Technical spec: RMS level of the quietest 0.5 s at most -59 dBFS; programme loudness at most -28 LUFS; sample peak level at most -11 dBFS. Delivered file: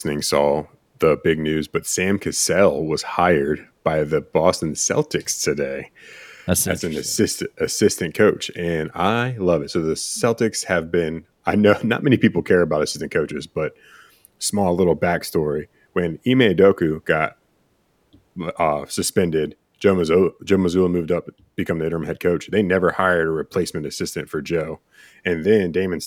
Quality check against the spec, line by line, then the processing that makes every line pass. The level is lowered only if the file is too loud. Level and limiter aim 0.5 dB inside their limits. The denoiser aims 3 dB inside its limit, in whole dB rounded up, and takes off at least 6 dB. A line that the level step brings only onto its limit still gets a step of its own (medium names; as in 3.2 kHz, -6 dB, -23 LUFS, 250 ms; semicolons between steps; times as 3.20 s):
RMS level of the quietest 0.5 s -63 dBFS: pass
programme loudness -20.0 LUFS: fail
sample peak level -2.5 dBFS: fail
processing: trim -8.5 dB; peak limiter -11.5 dBFS